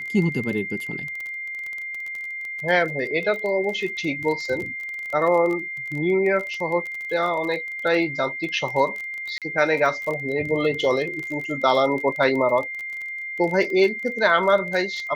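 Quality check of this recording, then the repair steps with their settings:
crackle 23/s -28 dBFS
tone 2100 Hz -29 dBFS
9.38–9.42 gap 37 ms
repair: de-click; notch 2100 Hz, Q 30; interpolate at 9.38, 37 ms

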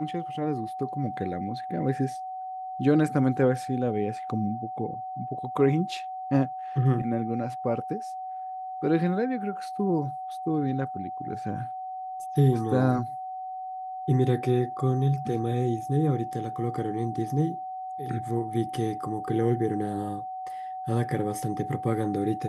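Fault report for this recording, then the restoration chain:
tone 750 Hz -33 dBFS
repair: notch 750 Hz, Q 30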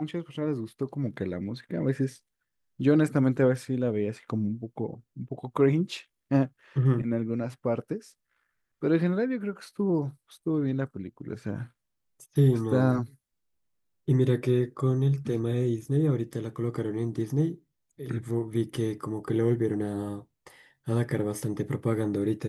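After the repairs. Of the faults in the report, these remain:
none

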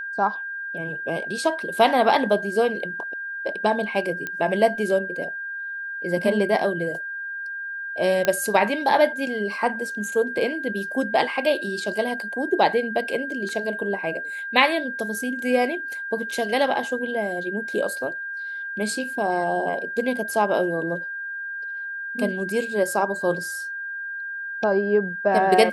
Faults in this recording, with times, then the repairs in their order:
tone 1600 Hz -29 dBFS
4.27 pop -15 dBFS
8.25 pop -7 dBFS
13.49 gap 2.3 ms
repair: de-click; notch 1600 Hz, Q 30; interpolate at 13.49, 2.3 ms

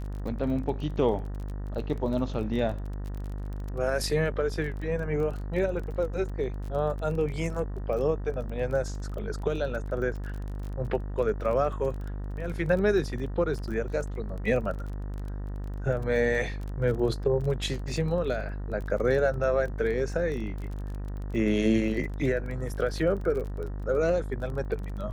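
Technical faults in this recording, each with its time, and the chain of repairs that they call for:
buzz 50 Hz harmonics 38 -34 dBFS
crackle 24/s -35 dBFS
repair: de-click; de-hum 50 Hz, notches 38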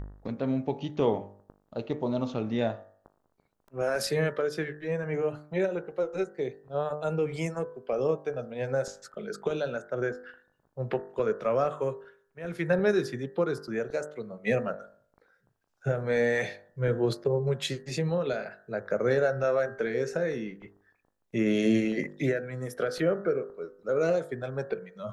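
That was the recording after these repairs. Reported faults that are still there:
none

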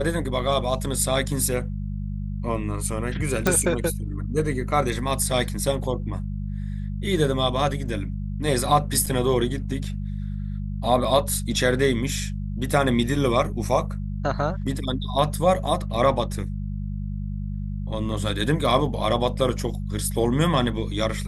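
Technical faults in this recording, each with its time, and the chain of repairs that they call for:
hum 50 Hz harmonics 4 -29 dBFS
3.47 pop
9.06–9.07 gap 5.3 ms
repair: de-click; de-hum 50 Hz, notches 4; interpolate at 9.06, 5.3 ms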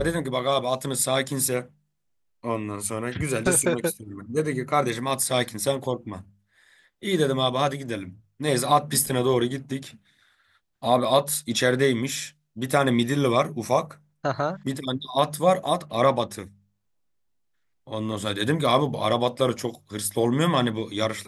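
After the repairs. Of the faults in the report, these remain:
none

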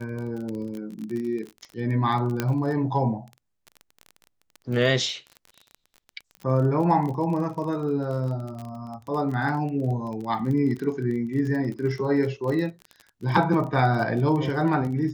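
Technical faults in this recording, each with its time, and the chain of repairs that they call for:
crackle 27/s -31 dBFS
2.4 pop -10 dBFS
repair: de-click

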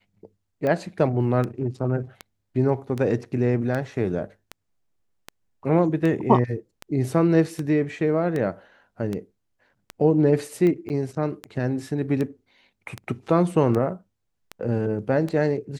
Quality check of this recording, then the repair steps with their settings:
tick 78 rpm -16 dBFS
10.89–10.9 gap 9.3 ms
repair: de-click; interpolate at 10.89, 9.3 ms

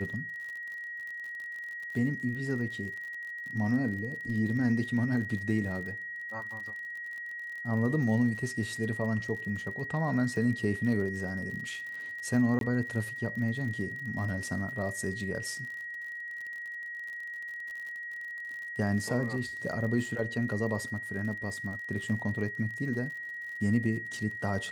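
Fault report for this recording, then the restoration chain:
crackle 54/s -39 dBFS
tone 1900 Hz -37 dBFS
12.59–12.61 gap 22 ms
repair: de-click; notch 1900 Hz, Q 30; interpolate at 12.59, 22 ms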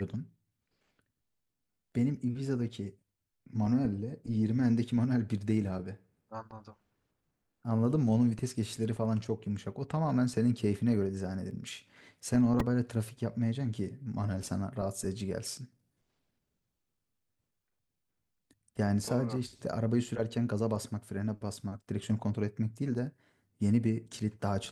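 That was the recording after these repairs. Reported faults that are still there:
none

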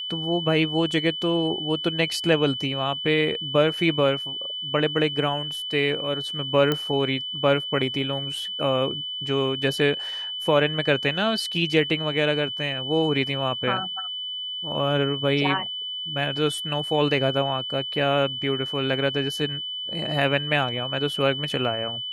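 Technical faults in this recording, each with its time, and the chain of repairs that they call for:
tone 3000 Hz -29 dBFS
6.72 pop -10 dBFS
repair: de-click; notch 3000 Hz, Q 30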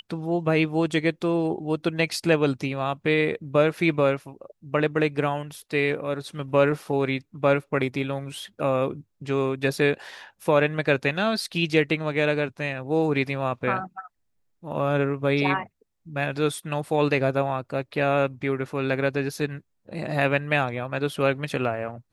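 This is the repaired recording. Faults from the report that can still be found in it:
none

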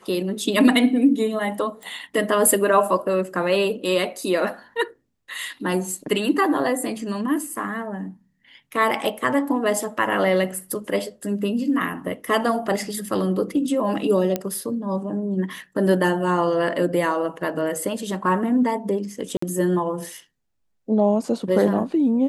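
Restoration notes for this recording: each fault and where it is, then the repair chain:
1.83 pop
14.36 pop -9 dBFS
19.37–19.42 gap 54 ms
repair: de-click; interpolate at 19.37, 54 ms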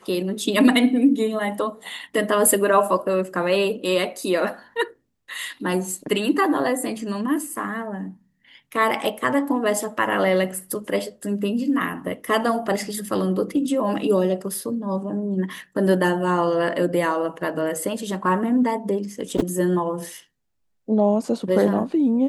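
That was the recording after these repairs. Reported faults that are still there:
none

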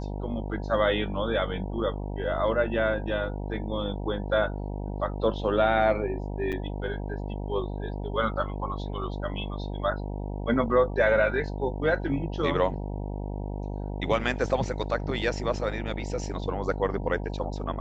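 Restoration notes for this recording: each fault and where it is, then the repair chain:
buzz 50 Hz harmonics 19 -33 dBFS
6.52–6.53 gap 6.9 ms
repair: de-hum 50 Hz, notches 19; interpolate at 6.52, 6.9 ms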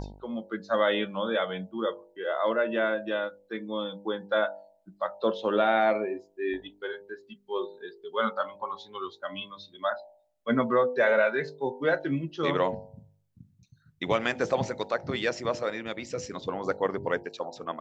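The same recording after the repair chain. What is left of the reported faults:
none

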